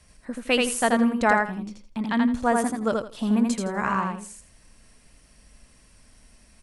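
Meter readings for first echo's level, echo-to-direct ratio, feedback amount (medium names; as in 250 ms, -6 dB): -3.0 dB, -3.0 dB, 21%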